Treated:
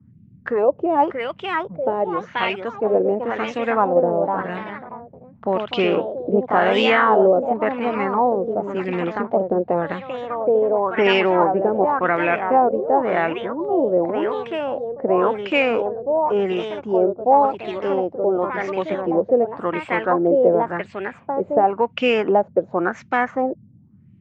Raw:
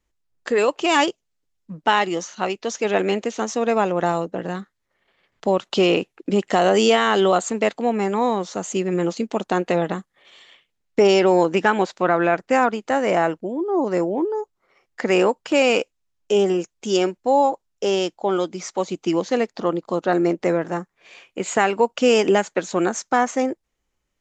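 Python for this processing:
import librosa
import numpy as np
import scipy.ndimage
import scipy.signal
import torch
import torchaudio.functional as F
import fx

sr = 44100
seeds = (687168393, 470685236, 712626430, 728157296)

y = fx.echo_pitch(x, sr, ms=688, semitones=2, count=3, db_per_echo=-6.0)
y = fx.filter_lfo_lowpass(y, sr, shape='sine', hz=0.92, low_hz=510.0, high_hz=2600.0, q=3.0)
y = fx.dmg_noise_band(y, sr, seeds[0], low_hz=85.0, high_hz=230.0, level_db=-47.0)
y = y * 10.0 ** (-3.0 / 20.0)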